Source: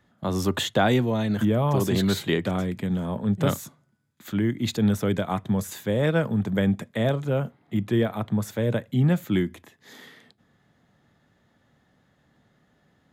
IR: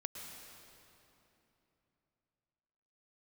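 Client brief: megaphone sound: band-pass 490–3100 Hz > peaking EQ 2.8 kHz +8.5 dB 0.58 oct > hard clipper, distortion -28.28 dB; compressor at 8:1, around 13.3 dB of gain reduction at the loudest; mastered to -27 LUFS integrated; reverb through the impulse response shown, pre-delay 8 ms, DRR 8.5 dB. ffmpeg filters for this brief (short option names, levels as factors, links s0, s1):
-filter_complex "[0:a]acompressor=threshold=0.0282:ratio=8,asplit=2[s0][s1];[1:a]atrim=start_sample=2205,adelay=8[s2];[s1][s2]afir=irnorm=-1:irlink=0,volume=0.447[s3];[s0][s3]amix=inputs=2:normalize=0,highpass=490,lowpass=3100,equalizer=f=2800:t=o:w=0.58:g=8.5,asoftclip=type=hard:threshold=0.0631,volume=5.01"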